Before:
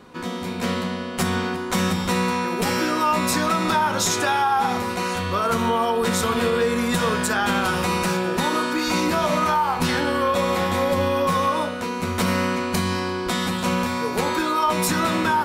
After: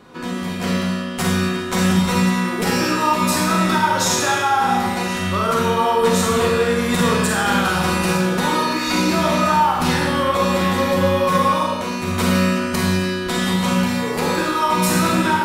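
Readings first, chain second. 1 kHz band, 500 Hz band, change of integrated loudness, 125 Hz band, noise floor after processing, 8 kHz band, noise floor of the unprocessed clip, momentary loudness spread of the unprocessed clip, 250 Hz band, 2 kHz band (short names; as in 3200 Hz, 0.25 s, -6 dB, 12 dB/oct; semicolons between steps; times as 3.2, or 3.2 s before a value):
+3.0 dB, +3.0 dB, +3.5 dB, +6.0 dB, -25 dBFS, +3.5 dB, -29 dBFS, 5 LU, +5.0 dB, +3.0 dB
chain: Schroeder reverb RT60 0.97 s, combs from 33 ms, DRR -1 dB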